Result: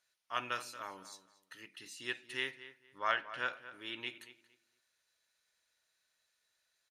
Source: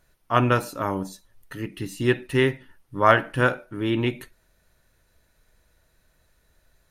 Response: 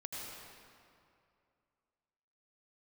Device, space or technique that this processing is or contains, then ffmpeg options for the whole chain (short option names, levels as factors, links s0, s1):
piezo pickup straight into a mixer: -filter_complex "[0:a]asettb=1/sr,asplit=3[s0][s1][s2];[s0]atrim=end=2.984[s3];[s1]atrim=start=2.98:end=3.53,asetpts=PTS-STARTPTS,afade=t=in:d=0.004:c=qsin,afade=t=out:st=0.546:d=0.004:c=qsin,lowpass=5600[s4];[s2]atrim=start=3.526[s5];[s3][s4]acrossfade=d=0.004:c1=hsin:c2=qsin[s6];[s6][s5]acrossfade=d=0.004:c1=qsin:c2=hsin,lowpass=5000,aderivative,asplit=2[s7][s8];[s8]adelay=230,lowpass=f=3200:p=1,volume=0.2,asplit=2[s9][s10];[s10]adelay=230,lowpass=f=3200:p=1,volume=0.24,asplit=2[s11][s12];[s12]adelay=230,lowpass=f=3200:p=1,volume=0.24[s13];[s7][s9][s11][s13]amix=inputs=4:normalize=0"